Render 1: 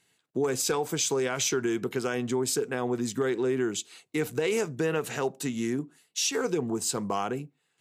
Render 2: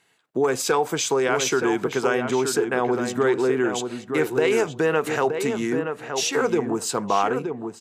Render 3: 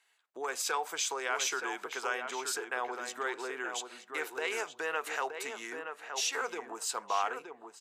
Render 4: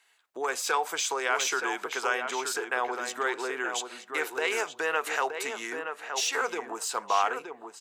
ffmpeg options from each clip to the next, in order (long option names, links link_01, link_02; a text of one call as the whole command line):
ffmpeg -i in.wav -filter_complex "[0:a]equalizer=frequency=1000:width=0.4:gain=10,asplit=2[link_01][link_02];[link_02]adelay=922,lowpass=frequency=2100:poles=1,volume=-6dB,asplit=2[link_03][link_04];[link_04]adelay=922,lowpass=frequency=2100:poles=1,volume=0.15,asplit=2[link_05][link_06];[link_06]adelay=922,lowpass=frequency=2100:poles=1,volume=0.15[link_07];[link_03][link_05][link_07]amix=inputs=3:normalize=0[link_08];[link_01][link_08]amix=inputs=2:normalize=0" out.wav
ffmpeg -i in.wav -af "highpass=830,volume=-7dB" out.wav
ffmpeg -i in.wav -af "deesser=0.7,volume=6dB" out.wav